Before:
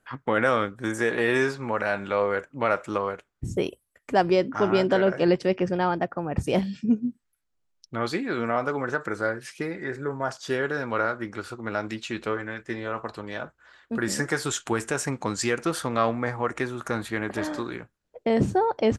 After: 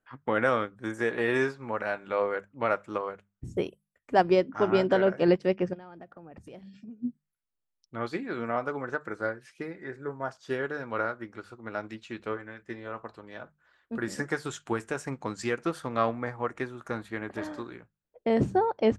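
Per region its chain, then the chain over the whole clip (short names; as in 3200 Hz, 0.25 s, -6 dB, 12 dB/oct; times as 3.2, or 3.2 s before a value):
5.73–7 bell 990 Hz -3.5 dB 0.41 oct + compressor 12:1, threshold -32 dBFS + overloaded stage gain 28 dB
whole clip: high shelf 3900 Hz -6.5 dB; notches 50/100/150/200 Hz; upward expander 1.5:1, over -38 dBFS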